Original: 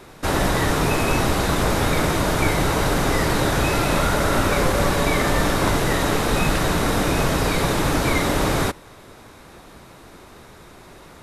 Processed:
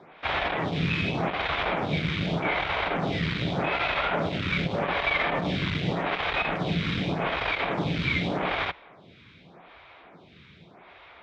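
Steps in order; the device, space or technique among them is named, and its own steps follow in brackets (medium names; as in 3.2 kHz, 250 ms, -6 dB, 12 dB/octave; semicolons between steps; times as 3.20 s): peaking EQ 310 Hz -4.5 dB 2.8 oct; vibe pedal into a guitar amplifier (lamp-driven phase shifter 0.84 Hz; valve stage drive 21 dB, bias 0.6; cabinet simulation 78–3800 Hz, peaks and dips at 170 Hz +9 dB, 700 Hz +5 dB, 2.3 kHz +8 dB, 3.3 kHz +7 dB)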